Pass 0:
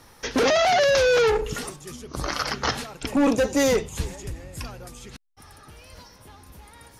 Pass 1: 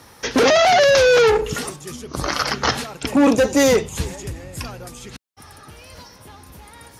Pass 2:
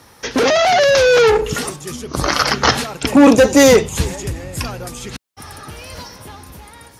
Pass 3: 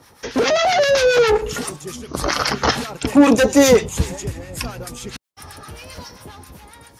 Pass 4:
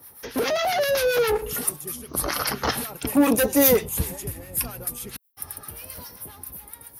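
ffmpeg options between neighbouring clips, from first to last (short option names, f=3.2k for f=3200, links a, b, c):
-af "highpass=63,volume=5.5dB"
-af "dynaudnorm=f=550:g=5:m=11.5dB"
-filter_complex "[0:a]acrossover=split=1000[a][b];[a]aeval=exprs='val(0)*(1-0.7/2+0.7/2*cos(2*PI*7.5*n/s))':c=same[c];[b]aeval=exprs='val(0)*(1-0.7/2-0.7/2*cos(2*PI*7.5*n/s))':c=same[d];[c][d]amix=inputs=2:normalize=0"
-af "aexciter=amount=15:drive=3.9:freq=10k,volume=-7dB"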